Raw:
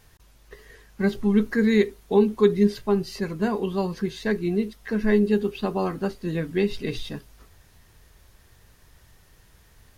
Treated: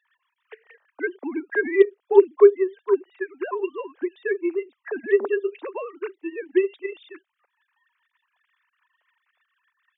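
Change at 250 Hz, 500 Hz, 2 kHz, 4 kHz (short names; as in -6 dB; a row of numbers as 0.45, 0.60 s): -7.0 dB, +4.0 dB, +2.5 dB, under -10 dB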